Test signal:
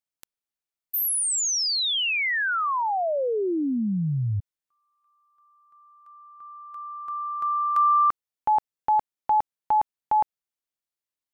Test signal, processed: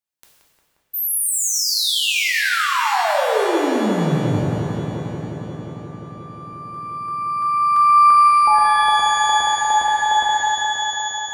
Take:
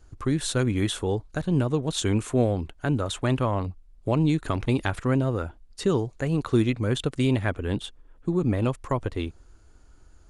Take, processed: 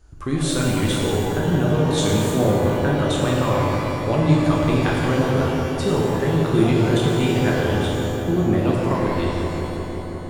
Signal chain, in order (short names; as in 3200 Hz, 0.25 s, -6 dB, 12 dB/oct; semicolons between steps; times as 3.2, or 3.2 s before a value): darkening echo 0.177 s, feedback 85%, low-pass 2400 Hz, level -6 dB; shimmer reverb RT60 1.5 s, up +12 st, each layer -8 dB, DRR -2.5 dB